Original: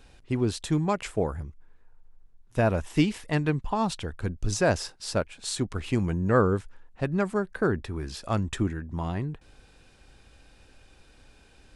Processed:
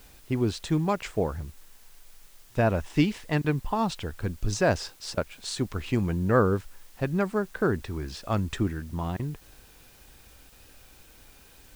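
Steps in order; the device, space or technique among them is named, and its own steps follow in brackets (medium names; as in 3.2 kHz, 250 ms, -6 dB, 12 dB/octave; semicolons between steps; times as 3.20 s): worn cassette (low-pass 7 kHz; wow and flutter 28 cents; level dips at 3.42/5.15/9.17/10.50 s, 22 ms -27 dB; white noise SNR 28 dB)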